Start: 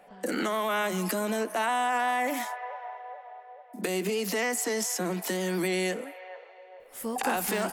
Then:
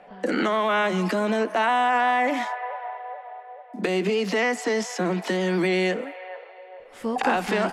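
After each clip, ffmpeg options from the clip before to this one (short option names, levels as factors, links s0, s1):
-af "lowpass=3900,volume=2"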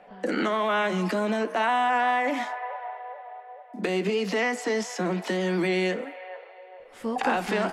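-af "flanger=delay=9:depth=1.2:regen=-83:speed=1.1:shape=triangular,volume=1.26"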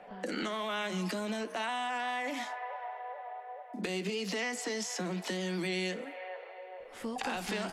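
-filter_complex "[0:a]acrossover=split=130|3000[s0][s1][s2];[s1]acompressor=threshold=0.01:ratio=2.5[s3];[s0][s3][s2]amix=inputs=3:normalize=0"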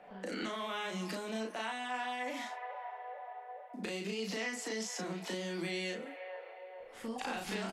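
-filter_complex "[0:a]asplit=2[s0][s1];[s1]adelay=36,volume=0.708[s2];[s0][s2]amix=inputs=2:normalize=0,volume=0.562"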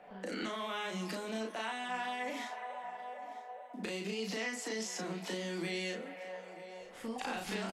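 -af "aecho=1:1:947|1894:0.126|0.0315"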